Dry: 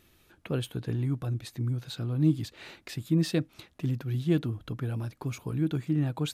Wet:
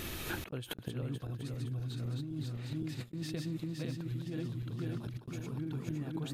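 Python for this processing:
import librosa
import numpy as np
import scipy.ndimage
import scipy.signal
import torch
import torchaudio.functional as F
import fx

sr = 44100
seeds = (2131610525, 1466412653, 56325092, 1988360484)

y = fx.reverse_delay_fb(x, sr, ms=257, feedback_pct=73, wet_db=-2.5)
y = fx.gate_flip(y, sr, shuts_db=-23.0, range_db=-32)
y = fx.over_compress(y, sr, threshold_db=-57.0, ratio=-1.0)
y = y * 10.0 ** (15.5 / 20.0)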